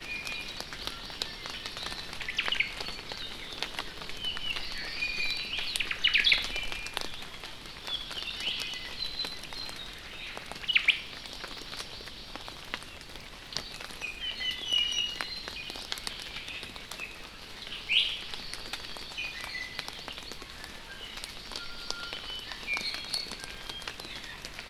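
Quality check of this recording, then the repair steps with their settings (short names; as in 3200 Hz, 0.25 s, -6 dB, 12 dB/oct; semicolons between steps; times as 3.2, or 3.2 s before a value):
crackle 27/s -43 dBFS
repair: de-click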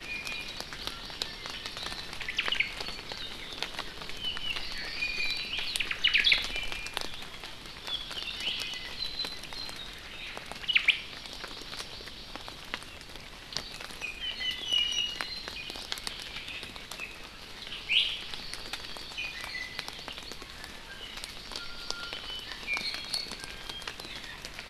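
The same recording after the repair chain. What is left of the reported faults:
none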